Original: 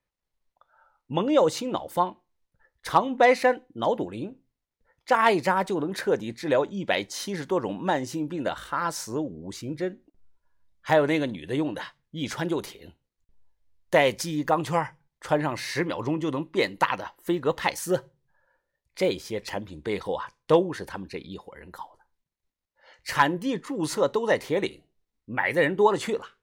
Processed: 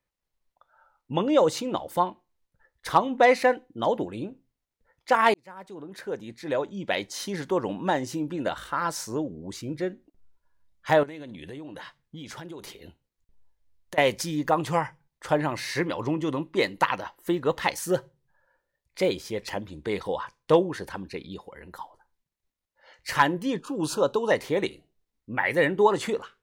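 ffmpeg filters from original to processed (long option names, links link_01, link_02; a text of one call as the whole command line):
ffmpeg -i in.wav -filter_complex "[0:a]asettb=1/sr,asplit=3[link_01][link_02][link_03];[link_01]atrim=end=11.034[link_04];[link_02]atrim=start=11.03:end=13.98,asetpts=PTS-STARTPTS,afade=type=in:duration=0.004:curve=qsin,afade=type=out:start_time=2.946:duration=0.004:curve=qsin,acompressor=threshold=-36dB:ratio=12:attack=3.2:release=140:knee=1:detection=peak[link_05];[link_03]atrim=start=13.976[link_06];[link_04][link_05]acrossfade=duration=0.004:curve1=hsin:curve2=qsin[link_07];[link_07][link_06]acrossfade=duration=0.004:curve1=qsin:curve2=hsin,asettb=1/sr,asplit=3[link_08][link_09][link_10];[link_08]atrim=end=23.594[link_11];[link_09]atrim=start=23.59:end=24.31,asetpts=PTS-STARTPTS,afade=type=in:duration=0.004:curve=qsin,afade=type=out:start_time=0.716:duration=0.004:curve=qsin,asuperstop=centerf=2000:order=12:qfactor=2.9[link_12];[link_10]atrim=start=24.306[link_13];[link_11][link_12]acrossfade=duration=0.004:curve1=hsin:curve2=qsin[link_14];[link_14][link_13]acrossfade=duration=0.004:curve1=qsin:curve2=hsin,asplit=2[link_15][link_16];[link_15]atrim=end=5.34,asetpts=PTS-STARTPTS,afade=type=out:start_time=5.336:duration=0.004:curve=hsin[link_17];[link_16]atrim=start=5.34,asetpts=PTS-STARTPTS,afade=type=in:duration=2.04[link_18];[link_17][link_18]concat=n=2:v=0:a=1" out.wav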